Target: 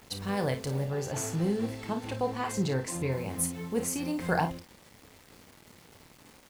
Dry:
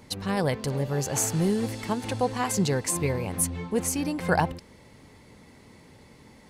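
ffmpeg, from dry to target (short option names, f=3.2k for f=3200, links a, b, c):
-filter_complex "[0:a]acrusher=bits=7:mix=0:aa=0.000001,asettb=1/sr,asplit=3[a][b][c];[a]atrim=end=0.854[d];[b]atrim=start=0.85:end=3.12,asetpts=PTS-STARTPTS,afade=t=in:d=0.004:c=qsin,afade=t=out:st=2.266:d=0.004:c=qsin,highshelf=f=5.4k:g=-8[e];[c]atrim=start=3.116[f];[d][e]acrossfade=d=0.004:c1=hsin:c2=qsin[g];[g][f]acrossfade=d=0.004:c1=qsin:c2=hsin,aecho=1:1:30|53:0.355|0.316,volume=-5dB"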